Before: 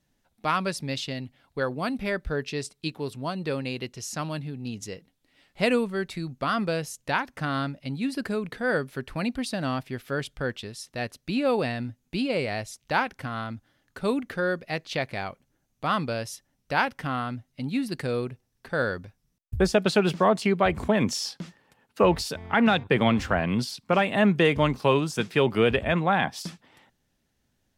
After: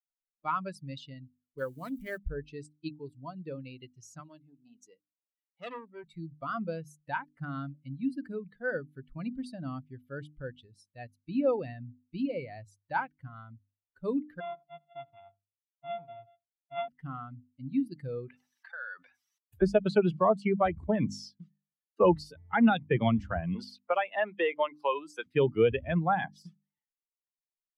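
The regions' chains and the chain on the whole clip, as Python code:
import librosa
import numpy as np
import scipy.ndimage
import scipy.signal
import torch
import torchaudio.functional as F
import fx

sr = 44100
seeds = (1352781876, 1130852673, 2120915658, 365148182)

y = fx.chain(x, sr, fx.crossing_spikes(level_db=-25.5),
    fx.high_shelf(hz=11000.0, db=3.5),
    fx.doppler_dist(depth_ms=0.14), at=(1.58, 2.18))
y = fx.chain(y, sr, fx.highpass(hz=240.0, slope=12),
    fx.transformer_sat(knee_hz=3200.0), at=(4.2, 6.04))
y = fx.chain(y, sr, fx.sample_sort(block=64),
    fx.cheby_ripple(hz=3500.0, ripple_db=9),
    fx.echo_feedback(ms=80, feedback_pct=24, wet_db=-15.0), at=(14.4, 16.88))
y = fx.chain(y, sr, fx.highpass(hz=980.0, slope=12),
    fx.high_shelf(hz=6600.0, db=-11.0),
    fx.env_flatten(amount_pct=70), at=(18.28, 19.62))
y = fx.chain(y, sr, fx.highpass(hz=470.0, slope=12),
    fx.band_squash(depth_pct=70), at=(23.55, 25.26))
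y = fx.bin_expand(y, sr, power=2.0)
y = fx.lowpass(y, sr, hz=1200.0, slope=6)
y = fx.hum_notches(y, sr, base_hz=50, count=6)
y = F.gain(torch.from_numpy(y), 2.0).numpy()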